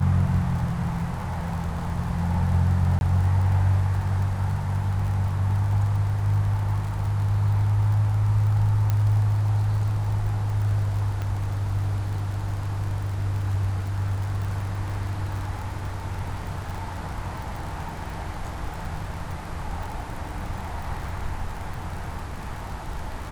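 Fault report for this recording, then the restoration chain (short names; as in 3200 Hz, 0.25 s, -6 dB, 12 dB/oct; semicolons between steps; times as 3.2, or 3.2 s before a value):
crackle 47/s -32 dBFS
2.99–3.01 gap 21 ms
8.9 pop -12 dBFS
11.22 pop -19 dBFS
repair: de-click; interpolate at 2.99, 21 ms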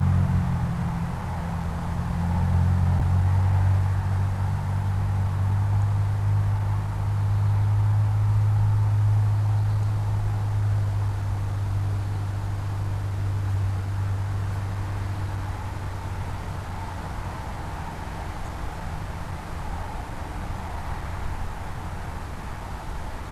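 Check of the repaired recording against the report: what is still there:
none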